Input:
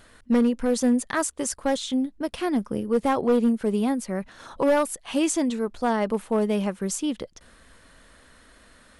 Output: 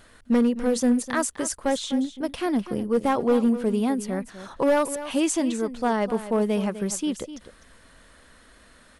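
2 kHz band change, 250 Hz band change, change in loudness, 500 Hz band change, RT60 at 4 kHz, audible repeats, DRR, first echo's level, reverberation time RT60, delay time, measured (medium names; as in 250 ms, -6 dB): 0.0 dB, 0.0 dB, 0.0 dB, 0.0 dB, no reverb, 1, no reverb, -13.0 dB, no reverb, 252 ms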